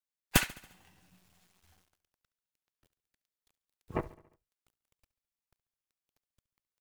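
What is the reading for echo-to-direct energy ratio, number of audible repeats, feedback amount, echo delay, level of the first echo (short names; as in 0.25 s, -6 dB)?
-17.5 dB, 4, 56%, 70 ms, -19.0 dB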